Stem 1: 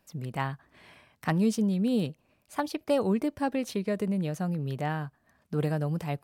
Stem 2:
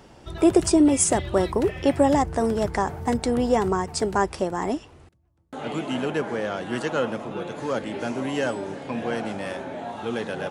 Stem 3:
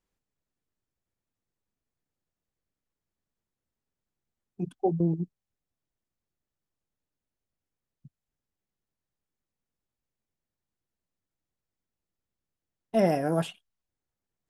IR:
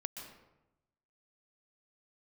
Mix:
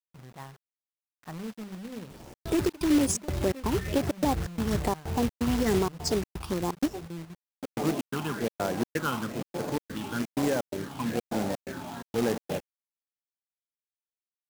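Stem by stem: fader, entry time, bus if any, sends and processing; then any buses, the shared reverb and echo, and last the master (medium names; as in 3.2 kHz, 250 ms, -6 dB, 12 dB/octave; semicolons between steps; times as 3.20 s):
-13.0 dB, 0.00 s, no send, low-pass 1.7 kHz 12 dB/octave; hum notches 50/100/150/200/250/300 Hz
+1.0 dB, 2.10 s, no send, peaking EQ 3.2 kHz -4 dB 1.4 oct; phase shifter stages 6, 1.1 Hz, lowest notch 500–3600 Hz; trance gate "xx.xx.xxx.xx.xx" 127 bpm -60 dB
-14.0 dB, 2.10 s, no send, none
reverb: none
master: companded quantiser 4-bit; peak limiter -17 dBFS, peak gain reduction 11 dB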